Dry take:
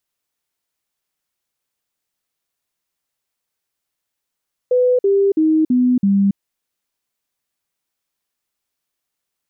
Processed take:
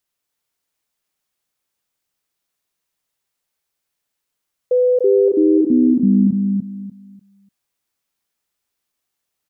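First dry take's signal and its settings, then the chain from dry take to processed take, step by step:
stepped sweep 499 Hz down, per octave 3, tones 5, 0.28 s, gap 0.05 s −11 dBFS
on a send: repeating echo 295 ms, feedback 26%, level −4 dB

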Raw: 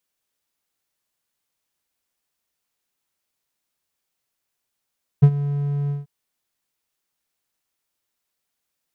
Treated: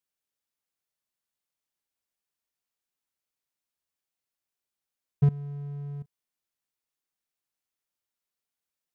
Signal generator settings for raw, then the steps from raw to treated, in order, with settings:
note with an ADSR envelope triangle 143 Hz, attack 15 ms, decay 64 ms, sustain −15.5 dB, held 0.68 s, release 159 ms −3 dBFS
output level in coarse steps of 18 dB

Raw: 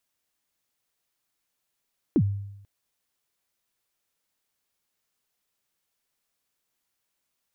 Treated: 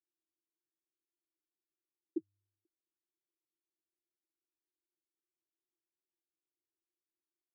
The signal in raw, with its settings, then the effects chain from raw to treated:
synth kick length 0.49 s, from 370 Hz, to 100 Hz, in 62 ms, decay 0.86 s, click off, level −15 dB
downward compressor, threshold −30 dBFS
flat-topped band-pass 340 Hz, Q 5.6

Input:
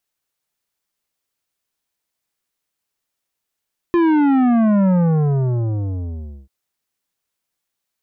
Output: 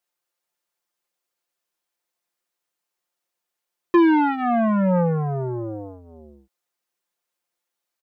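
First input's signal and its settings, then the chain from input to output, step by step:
bass drop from 350 Hz, over 2.54 s, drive 11.5 dB, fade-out 1.59 s, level −13 dB
bass and treble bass −13 dB, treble +4 dB
comb filter 5.7 ms, depth 66%
one half of a high-frequency compander decoder only

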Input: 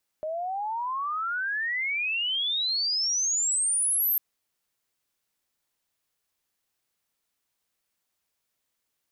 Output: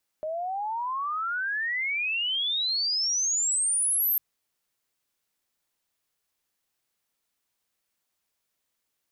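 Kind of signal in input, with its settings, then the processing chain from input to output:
glide logarithmic 610 Hz → 13,000 Hz −28.5 dBFS → −21.5 dBFS 3.95 s
mains-hum notches 50/100/150 Hz

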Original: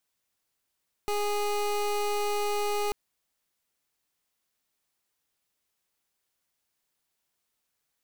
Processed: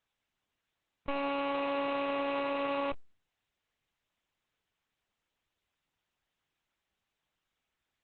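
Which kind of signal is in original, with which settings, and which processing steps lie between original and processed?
pulse wave 413 Hz, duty 24% −28 dBFS 1.84 s
high-pass filter 130 Hz 12 dB per octave
one-pitch LPC vocoder at 8 kHz 280 Hz
Opus 10 kbit/s 48,000 Hz

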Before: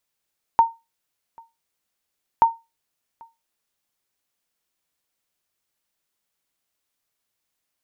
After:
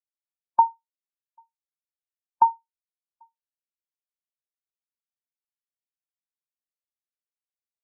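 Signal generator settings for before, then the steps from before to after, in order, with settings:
ping with an echo 916 Hz, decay 0.23 s, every 1.83 s, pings 2, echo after 0.79 s, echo −29.5 dB −6.5 dBFS
downward compressor, threshold −17 dBFS
every bin expanded away from the loudest bin 1.5 to 1

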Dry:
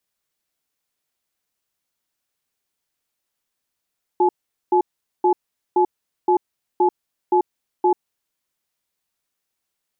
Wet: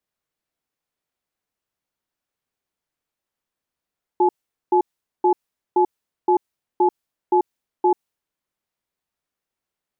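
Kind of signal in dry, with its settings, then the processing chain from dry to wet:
tone pair in a cadence 361 Hz, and 855 Hz, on 0.09 s, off 0.43 s, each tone −15.5 dBFS 3.94 s
one half of a high-frequency compander decoder only

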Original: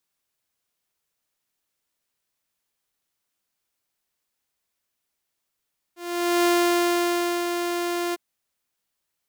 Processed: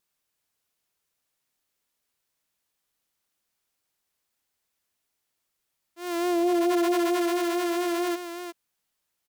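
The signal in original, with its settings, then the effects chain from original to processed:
note with an ADSR envelope saw 348 Hz, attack 486 ms, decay 992 ms, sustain −7 dB, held 2.18 s, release 24 ms −14.5 dBFS
pitch vibrato 4.5 Hz 45 cents
single-tap delay 361 ms −10 dB
saturating transformer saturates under 660 Hz

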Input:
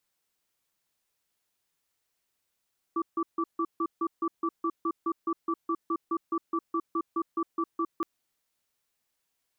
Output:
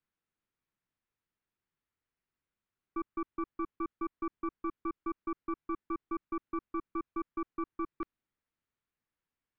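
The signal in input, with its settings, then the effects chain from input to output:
tone pair in a cadence 332 Hz, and 1,160 Hz, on 0.06 s, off 0.15 s, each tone −28 dBFS 5.07 s
stylus tracing distortion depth 0.26 ms
Bessel low-pass filter 1,300 Hz, order 2
parametric band 650 Hz −9.5 dB 1.5 octaves

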